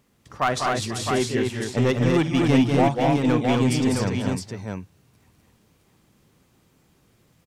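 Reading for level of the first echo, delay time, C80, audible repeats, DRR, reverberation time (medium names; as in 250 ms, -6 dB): -17.5 dB, 50 ms, no reverb, 5, no reverb, no reverb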